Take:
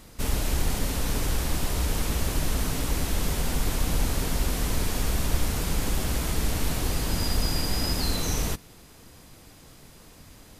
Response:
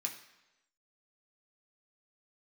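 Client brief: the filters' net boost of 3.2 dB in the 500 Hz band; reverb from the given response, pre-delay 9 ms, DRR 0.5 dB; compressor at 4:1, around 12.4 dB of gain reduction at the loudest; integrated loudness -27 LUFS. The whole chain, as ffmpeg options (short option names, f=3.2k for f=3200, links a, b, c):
-filter_complex "[0:a]equalizer=f=500:t=o:g=4,acompressor=threshold=-32dB:ratio=4,asplit=2[a][b];[1:a]atrim=start_sample=2205,adelay=9[c];[b][c]afir=irnorm=-1:irlink=0,volume=-0.5dB[d];[a][d]amix=inputs=2:normalize=0,volume=7.5dB"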